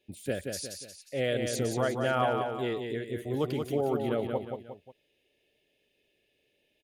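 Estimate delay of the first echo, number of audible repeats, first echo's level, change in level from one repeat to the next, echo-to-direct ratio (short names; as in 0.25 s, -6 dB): 0.179 s, 3, -5.0 dB, -7.0 dB, -4.0 dB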